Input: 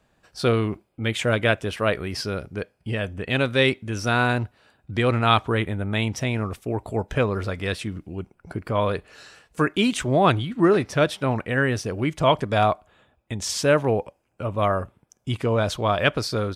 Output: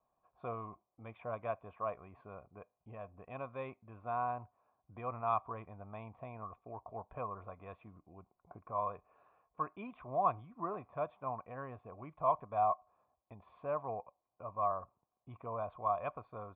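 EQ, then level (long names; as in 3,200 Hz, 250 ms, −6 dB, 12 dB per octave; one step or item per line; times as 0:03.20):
parametric band 770 Hz −11.5 dB 0.47 octaves
dynamic equaliser 360 Hz, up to −6 dB, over −37 dBFS, Q 1.5
formant resonators in series a
+3.5 dB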